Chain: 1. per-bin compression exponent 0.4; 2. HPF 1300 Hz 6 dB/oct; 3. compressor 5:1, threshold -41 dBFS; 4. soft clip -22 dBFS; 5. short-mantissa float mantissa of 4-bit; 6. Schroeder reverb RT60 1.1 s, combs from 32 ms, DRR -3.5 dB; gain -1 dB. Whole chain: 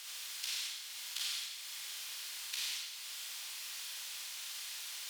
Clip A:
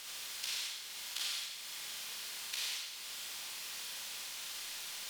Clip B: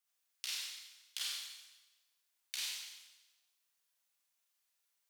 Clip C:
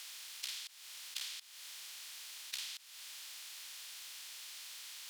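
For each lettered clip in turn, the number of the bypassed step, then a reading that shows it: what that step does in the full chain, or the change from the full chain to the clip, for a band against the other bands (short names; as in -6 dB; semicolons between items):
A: 2, 1 kHz band +3.5 dB; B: 1, 1 kHz band -3.0 dB; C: 6, crest factor change +5.0 dB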